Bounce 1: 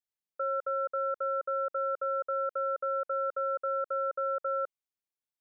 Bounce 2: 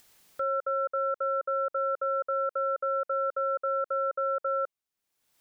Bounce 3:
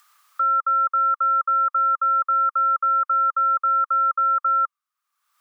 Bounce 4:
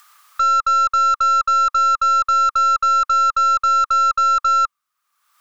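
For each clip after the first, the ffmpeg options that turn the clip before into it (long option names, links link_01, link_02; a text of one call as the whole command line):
ffmpeg -i in.wav -af "acompressor=mode=upward:threshold=-40dB:ratio=2.5,volume=2.5dB" out.wav
ffmpeg -i in.wav -af "highpass=frequency=1200:width_type=q:width=12,volume=-1dB" out.wav
ffmpeg -i in.wav -af "aeval=exprs='0.188*(cos(1*acos(clip(val(0)/0.188,-1,1)))-cos(1*PI/2))+0.00841*(cos(4*acos(clip(val(0)/0.188,-1,1)))-cos(4*PI/2))+0.0168*(cos(5*acos(clip(val(0)/0.188,-1,1)))-cos(5*PI/2))':channel_layout=same,volume=4.5dB" out.wav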